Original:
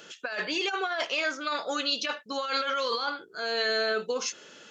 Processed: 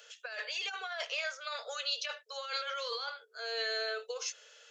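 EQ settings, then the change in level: rippled Chebyshev high-pass 440 Hz, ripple 3 dB; peaking EQ 920 Hz -8 dB 2.9 oct; -1.5 dB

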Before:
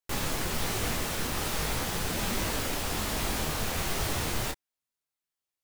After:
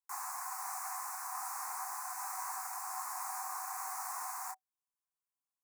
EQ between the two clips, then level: rippled Chebyshev high-pass 730 Hz, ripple 9 dB; Chebyshev band-stop 1.3–7.3 kHz, order 2; +2.5 dB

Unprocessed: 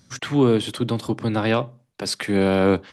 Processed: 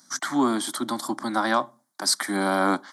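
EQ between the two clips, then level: high-pass 270 Hz 24 dB/octave; treble shelf 4.8 kHz +5 dB; static phaser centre 1.1 kHz, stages 4; +5.0 dB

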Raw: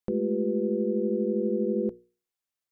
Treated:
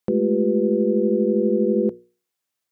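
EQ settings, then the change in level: high-pass 96 Hz; +7.5 dB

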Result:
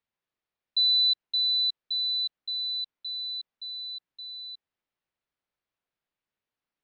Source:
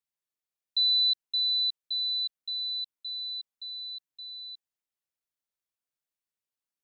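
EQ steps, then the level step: distance through air 250 m; +9.0 dB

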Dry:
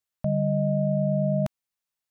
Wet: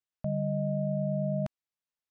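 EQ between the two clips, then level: distance through air 65 m; -6.0 dB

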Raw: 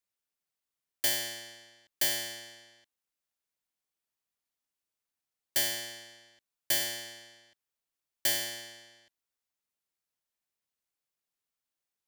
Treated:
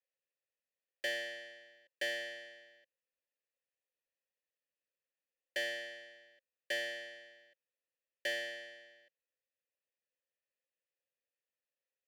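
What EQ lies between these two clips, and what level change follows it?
vowel filter e; +8.5 dB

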